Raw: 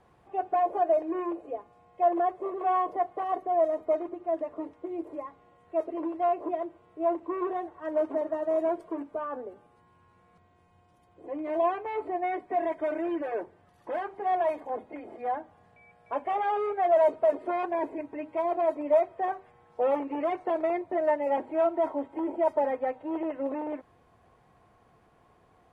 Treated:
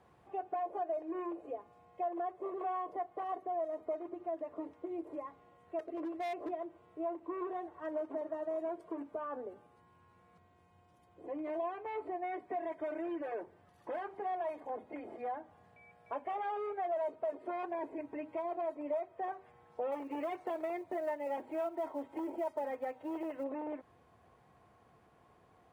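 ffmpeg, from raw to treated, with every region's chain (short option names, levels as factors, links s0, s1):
-filter_complex "[0:a]asettb=1/sr,asplit=3[s0][s1][s2];[s0]atrim=end=5.794[s3];[s1]atrim=start=5.79:end=6.51,asetpts=PTS-STARTPTS,afade=t=in:d=0.004:c=qsin,afade=t=out:st=0.716:d=0.004:c=qsin,asuperstop=centerf=930:order=4:qfactor=6.8,asoftclip=type=hard:threshold=0.0398[s4];[s2]atrim=start=6.506[s5];[s3][s4]acrossfade=d=0.004:c1=hsin:c2=qsin[s6];[s6][s5]acrossfade=d=0.004:c1=qsin:c2=hsin,asettb=1/sr,asplit=3[s7][s8][s9];[s7]atrim=end=19.924[s10];[s8]atrim=start=19.92:end=23.44,asetpts=PTS-STARTPTS,afade=t=in:d=0.004:c=qsin,afade=t=out:st=3.516:d=0.004:c=qsin,highshelf=f=2700:g=7.5,acrusher=bits=9:mode=log:mix=0:aa=0.000001[s11];[s9]atrim=start=23.436[s12];[s10][s11]acrossfade=d=0.004:c1=hsin:c2=qsin[s13];[s13][s12]acrossfade=d=0.004:c1=qsin:c2=hsin,highpass=55,acompressor=threshold=0.0178:ratio=2.5,volume=0.708"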